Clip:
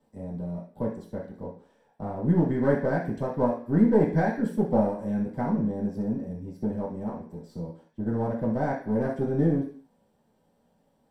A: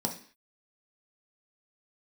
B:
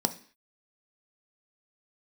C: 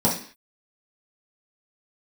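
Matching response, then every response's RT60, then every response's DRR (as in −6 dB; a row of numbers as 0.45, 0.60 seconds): C; 0.45, 0.45, 0.45 seconds; 1.0, 8.0, −7.5 decibels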